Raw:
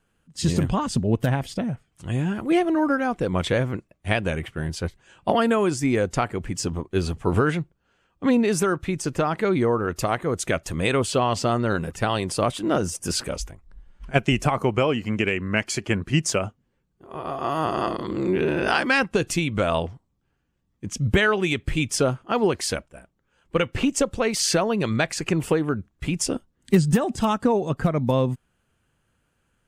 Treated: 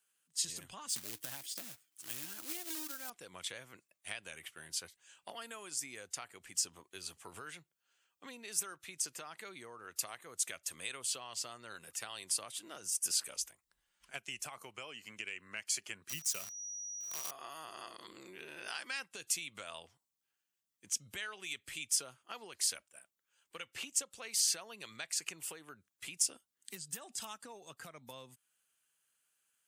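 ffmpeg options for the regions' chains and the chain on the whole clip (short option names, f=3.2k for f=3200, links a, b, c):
-filter_complex "[0:a]asettb=1/sr,asplit=3[a][b][c];[a]atrim=end=0.894[d];[b]atrim=start=0.89:end=3.1,asetpts=PTS-STARTPTS,afade=t=in:d=0.004:c=qsin,afade=t=out:st=2.206:d=0.004:c=qsin,equalizer=f=310:t=o:w=0.2:g=12.5,acrusher=bits=3:mode=log:mix=0:aa=0.000001[e];[c]atrim=start=3.096[f];[d][e]acrossfade=d=0.004:c1=hsin:c2=qsin[g];[g][f]acrossfade=d=0.004:c1=qsin:c2=hsin,asettb=1/sr,asplit=3[h][i][j];[h]atrim=end=16.094[k];[i]atrim=start=16.09:end=17.31,asetpts=PTS-STARTPTS,afade=t=in:d=0.004:c=qsin,afade=t=out:st=1.216:d=0.004:c=qsin,equalizer=f=160:w=1.3:g=7,acrusher=bits=6:dc=4:mix=0:aa=0.000001,aeval=exprs='val(0)+0.01*sin(2*PI*5800*n/s)':c=same[l];[j]atrim=start=17.306[m];[k][l]acrossfade=d=0.004:c1=hsin:c2=qsin[n];[n][m]acrossfade=d=0.004:c1=qsin:c2=hsin,acrossover=split=120[o][p];[p]acompressor=threshold=-29dB:ratio=3[q];[o][q]amix=inputs=2:normalize=0,aderivative,volume=1dB"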